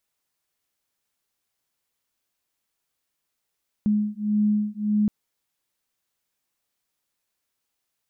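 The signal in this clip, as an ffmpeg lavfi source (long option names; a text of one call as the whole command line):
ffmpeg -f lavfi -i "aevalsrc='0.0708*(sin(2*PI*209*t)+sin(2*PI*210.7*t))':duration=1.22:sample_rate=44100" out.wav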